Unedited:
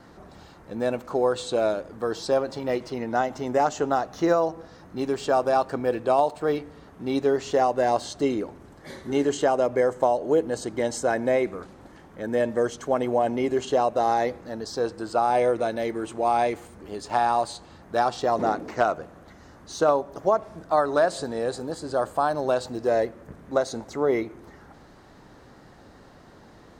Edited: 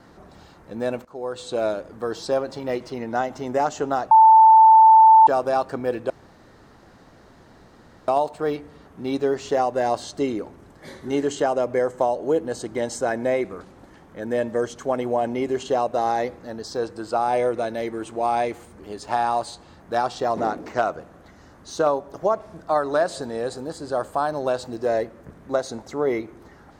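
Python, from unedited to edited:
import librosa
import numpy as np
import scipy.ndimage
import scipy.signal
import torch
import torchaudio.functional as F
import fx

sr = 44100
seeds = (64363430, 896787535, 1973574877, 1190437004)

y = fx.edit(x, sr, fx.fade_in_from(start_s=1.05, length_s=0.59, floor_db=-19.0),
    fx.bleep(start_s=4.11, length_s=1.16, hz=886.0, db=-7.5),
    fx.insert_room_tone(at_s=6.1, length_s=1.98), tone=tone)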